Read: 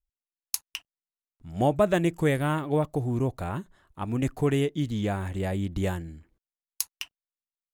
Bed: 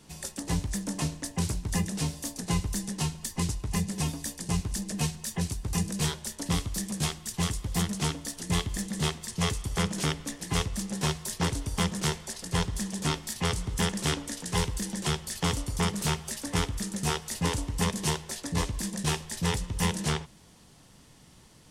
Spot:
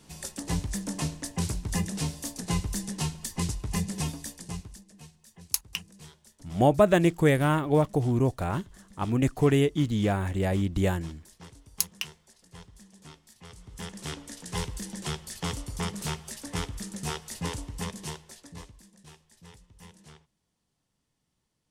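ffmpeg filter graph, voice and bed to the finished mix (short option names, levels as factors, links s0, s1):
-filter_complex "[0:a]adelay=5000,volume=1.33[s0];[1:a]volume=5.96,afade=t=out:st=3.96:d=0.88:silence=0.1,afade=t=in:st=13.49:d=1.09:silence=0.158489,afade=t=out:st=17.41:d=1.44:silence=0.112202[s1];[s0][s1]amix=inputs=2:normalize=0"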